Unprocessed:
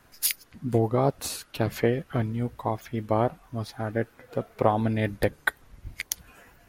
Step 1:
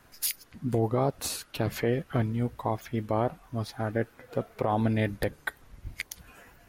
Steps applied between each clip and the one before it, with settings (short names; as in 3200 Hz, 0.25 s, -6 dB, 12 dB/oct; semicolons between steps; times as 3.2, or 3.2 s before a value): limiter -16 dBFS, peak gain reduction 11.5 dB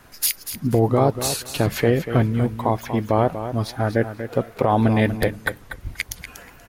feedback echo 0.24 s, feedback 17%, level -10.5 dB; gain +8.5 dB